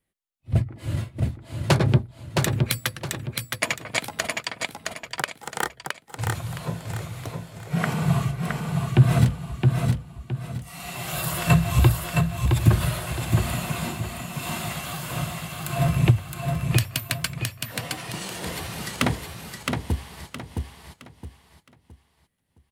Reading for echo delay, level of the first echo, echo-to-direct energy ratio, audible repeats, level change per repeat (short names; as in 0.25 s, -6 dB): 0.666 s, -4.0 dB, -3.5 dB, 4, -10.0 dB